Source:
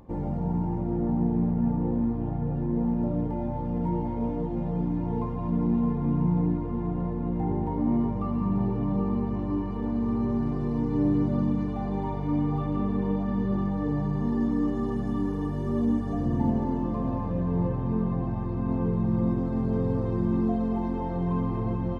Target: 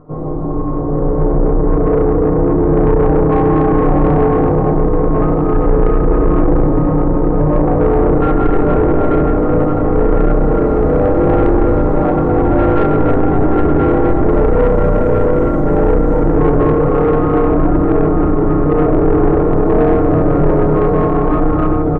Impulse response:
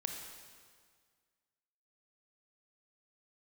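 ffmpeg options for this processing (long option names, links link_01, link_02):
-filter_complex "[0:a]highshelf=frequency=1600:width_type=q:width=1.5:gain=-12,aeval=exprs='val(0)*sin(2*PI*200*n/s)':channel_layout=same,bandreject=frequency=890:width=24,asplit=2[link_01][link_02];[link_02]asetrate=35002,aresample=44100,atempo=1.25992,volume=-10dB[link_03];[link_01][link_03]amix=inputs=2:normalize=0,aecho=1:1:6.6:0.77,asplit=6[link_04][link_05][link_06][link_07][link_08][link_09];[link_05]adelay=92,afreqshift=31,volume=-11dB[link_10];[link_06]adelay=184,afreqshift=62,volume=-16.8dB[link_11];[link_07]adelay=276,afreqshift=93,volume=-22.7dB[link_12];[link_08]adelay=368,afreqshift=124,volume=-28.5dB[link_13];[link_09]adelay=460,afreqshift=155,volume=-34.4dB[link_14];[link_04][link_10][link_11][link_12][link_13][link_14]amix=inputs=6:normalize=0[link_15];[1:a]atrim=start_sample=2205,asetrate=23373,aresample=44100[link_16];[link_15][link_16]afir=irnorm=-1:irlink=0,dynaudnorm=framelen=380:gausssize=7:maxgain=11.5dB,asoftclip=type=tanh:threshold=-12.5dB,volume=6.5dB"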